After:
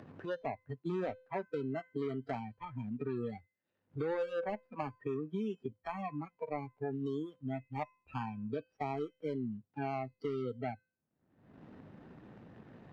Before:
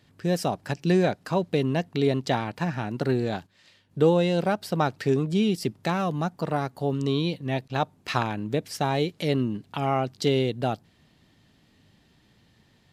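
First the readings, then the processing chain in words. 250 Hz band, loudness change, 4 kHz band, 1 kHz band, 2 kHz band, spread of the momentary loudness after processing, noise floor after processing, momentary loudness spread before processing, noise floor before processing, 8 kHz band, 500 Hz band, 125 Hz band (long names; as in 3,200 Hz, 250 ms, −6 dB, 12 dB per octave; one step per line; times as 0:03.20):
−13.5 dB, −13.5 dB, −24.5 dB, −12.5 dB, −14.5 dB, 17 LU, below −85 dBFS, 7 LU, −62 dBFS, below −30 dB, −12.5 dB, −16.0 dB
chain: running median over 41 samples
noise reduction from a noise print of the clip's start 26 dB
brickwall limiter −21 dBFS, peak gain reduction 10 dB
low-pass filter 1,700 Hz 12 dB per octave
spectral tilt +3 dB per octave
upward compression, threshold −51 dBFS
tuned comb filter 510 Hz, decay 0.39 s, mix 60%
multiband upward and downward compressor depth 70%
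level +5 dB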